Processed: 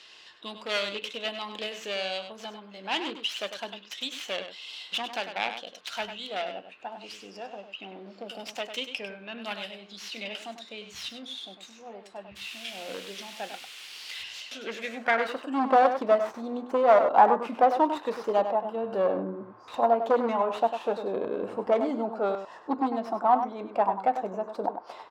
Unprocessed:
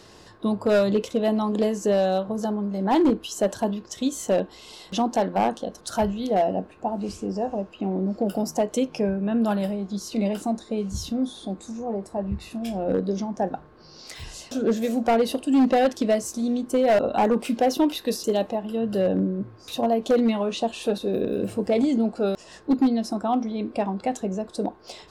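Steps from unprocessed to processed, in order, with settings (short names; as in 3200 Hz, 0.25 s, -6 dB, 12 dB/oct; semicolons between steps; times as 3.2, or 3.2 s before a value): tracing distortion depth 0.28 ms; 12.35–14.22 added noise white -42 dBFS; band-pass sweep 2900 Hz -> 980 Hz, 14.56–15.72; outdoor echo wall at 17 m, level -9 dB; gain +8 dB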